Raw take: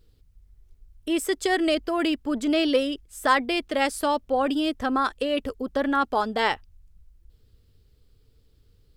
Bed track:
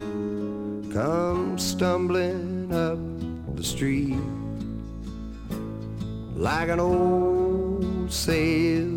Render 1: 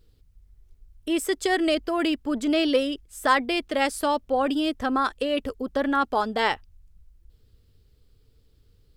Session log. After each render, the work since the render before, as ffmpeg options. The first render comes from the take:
-af anull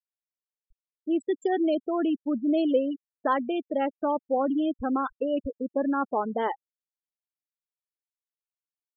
-af "afftfilt=real='re*gte(hypot(re,im),0.112)':imag='im*gte(hypot(re,im),0.112)':win_size=1024:overlap=0.75,equalizer=f=2400:t=o:w=1.6:g=-14.5"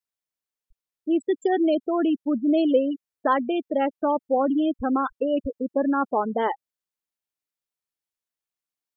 -af "volume=1.5"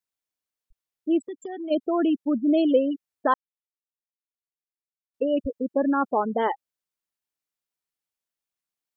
-filter_complex "[0:a]asplit=3[s0][s1][s2];[s0]afade=t=out:st=1.26:d=0.02[s3];[s1]acompressor=threshold=0.0126:ratio=2.5:attack=3.2:release=140:knee=1:detection=peak,afade=t=in:st=1.26:d=0.02,afade=t=out:st=1.7:d=0.02[s4];[s2]afade=t=in:st=1.7:d=0.02[s5];[s3][s4][s5]amix=inputs=3:normalize=0,asplit=3[s6][s7][s8];[s6]atrim=end=3.34,asetpts=PTS-STARTPTS,afade=t=out:st=3.336:d=0.004:c=hsin[s9];[s7]atrim=start=3.34:end=5.14,asetpts=PTS-STARTPTS,volume=0[s10];[s8]atrim=start=5.14,asetpts=PTS-STARTPTS,afade=t=in:d=0.004:c=hsin[s11];[s9][s10][s11]concat=n=3:v=0:a=1"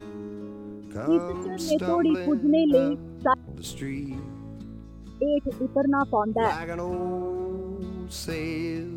-filter_complex "[1:a]volume=0.398[s0];[0:a][s0]amix=inputs=2:normalize=0"

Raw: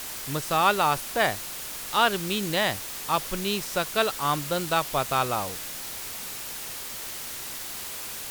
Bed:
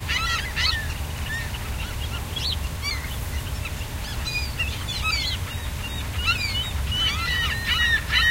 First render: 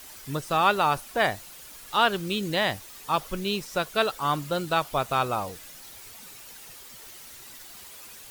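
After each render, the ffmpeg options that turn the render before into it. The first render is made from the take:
-af "afftdn=nr=11:nf=-36"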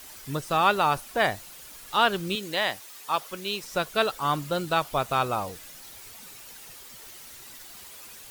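-filter_complex "[0:a]asettb=1/sr,asplit=3[s0][s1][s2];[s0]atrim=end=2.354[s3];[s1]atrim=start=2.35:end=3.64,asetpts=PTS-STARTPTS,afade=t=in:d=0.004:c=qsin,afade=t=out:st=1.286:d=0.004:c=qsin,highpass=f=530:p=1[s4];[s2]atrim=start=3.636[s5];[s3][s4]acrossfade=d=0.004:c1=hsin:c2=qsin[s6];[s6][s5]acrossfade=d=0.004:c1=qsin:c2=hsin"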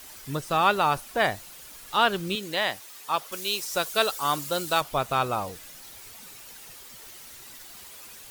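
-filter_complex "[0:a]asettb=1/sr,asplit=3[s0][s1][s2];[s0]atrim=end=3.324[s3];[s1]atrim=start=3.32:end=4.81,asetpts=PTS-STARTPTS,afade=t=in:d=0.004:c=qsin,afade=t=out:st=1.486:d=0.004:c=qsin,bass=f=250:g=-7,treble=f=4000:g=9[s4];[s2]atrim=start=4.806[s5];[s3][s4]acrossfade=d=0.004:c1=hsin:c2=qsin[s6];[s6][s5]acrossfade=d=0.004:c1=qsin:c2=hsin"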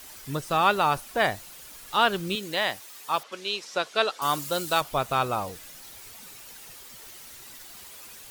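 -filter_complex "[0:a]asettb=1/sr,asplit=3[s0][s1][s2];[s0]atrim=end=3.234[s3];[s1]atrim=start=3.23:end=4.22,asetpts=PTS-STARTPTS,afade=t=in:d=0.004:c=qsin,afade=t=out:st=0.986:d=0.004:c=qsin,highpass=210,lowpass=4300[s4];[s2]atrim=start=4.216[s5];[s3][s4]acrossfade=d=0.004:c1=hsin:c2=qsin[s6];[s6][s5]acrossfade=d=0.004:c1=qsin:c2=hsin"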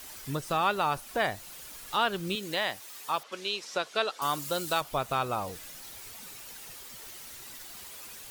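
-af "acompressor=threshold=0.0251:ratio=1.5"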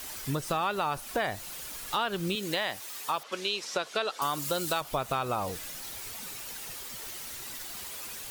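-filter_complex "[0:a]asplit=2[s0][s1];[s1]alimiter=limit=0.075:level=0:latency=1,volume=0.708[s2];[s0][s2]amix=inputs=2:normalize=0,acompressor=threshold=0.0501:ratio=4"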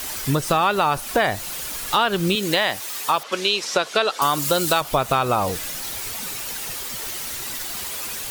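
-af "volume=3.35"

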